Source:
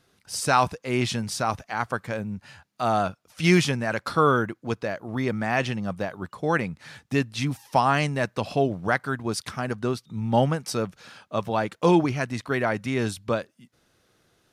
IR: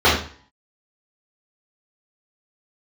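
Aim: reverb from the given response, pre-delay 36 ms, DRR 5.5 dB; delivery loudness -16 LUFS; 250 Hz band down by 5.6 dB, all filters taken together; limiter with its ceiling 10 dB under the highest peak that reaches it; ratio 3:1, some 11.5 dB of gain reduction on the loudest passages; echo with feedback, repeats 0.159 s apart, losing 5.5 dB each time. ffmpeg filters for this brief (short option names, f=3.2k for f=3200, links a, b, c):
-filter_complex "[0:a]equalizer=f=250:t=o:g=-8.5,acompressor=threshold=-32dB:ratio=3,alimiter=level_in=3.5dB:limit=-24dB:level=0:latency=1,volume=-3.5dB,aecho=1:1:159|318|477|636|795|954|1113:0.531|0.281|0.149|0.079|0.0419|0.0222|0.0118,asplit=2[a][b];[1:a]atrim=start_sample=2205,adelay=36[c];[b][c]afir=irnorm=-1:irlink=0,volume=-30.5dB[d];[a][d]amix=inputs=2:normalize=0,volume=20dB"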